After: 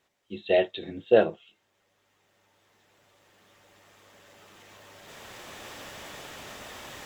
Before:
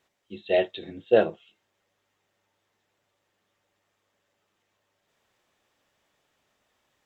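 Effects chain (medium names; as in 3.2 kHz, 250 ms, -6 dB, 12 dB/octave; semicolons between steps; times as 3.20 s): recorder AGC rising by 6.7 dB/s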